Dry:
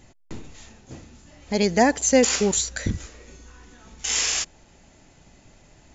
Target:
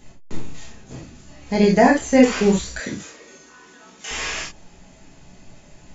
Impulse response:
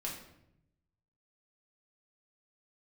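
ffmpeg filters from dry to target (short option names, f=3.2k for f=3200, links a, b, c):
-filter_complex "[1:a]atrim=start_sample=2205,atrim=end_sample=3528[a];[0:a][a]afir=irnorm=-1:irlink=0,acrossover=split=2800[b][c];[c]acompressor=threshold=-38dB:ratio=4:attack=1:release=60[d];[b][d]amix=inputs=2:normalize=0,asettb=1/sr,asplit=3[e][f][g];[e]atrim=end=2.804[h];[f]atrim=start=2.8:end=4.11,asetpts=PTS-STARTPTS,afade=t=in:d=0.004:c=qsin,afade=t=out:st=1.306:d=0.004:c=qsin,highpass=290[i];[g]atrim=start=4.106[j];[h][i]acrossfade=d=0.004:c1=hsin:c2=qsin[k];[k][j]acrossfade=d=0.004:c1=qsin:c2=hsin,volume=4.5dB"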